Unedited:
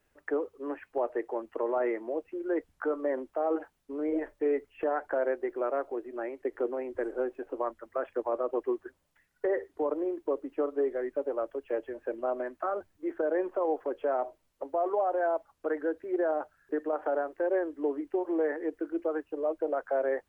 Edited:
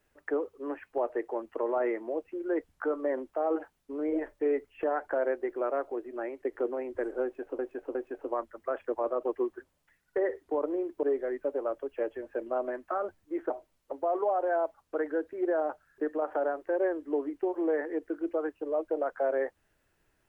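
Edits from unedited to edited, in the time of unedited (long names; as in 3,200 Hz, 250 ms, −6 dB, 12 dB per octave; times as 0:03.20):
0:07.23–0:07.59: repeat, 3 plays
0:10.31–0:10.75: remove
0:13.22–0:14.21: remove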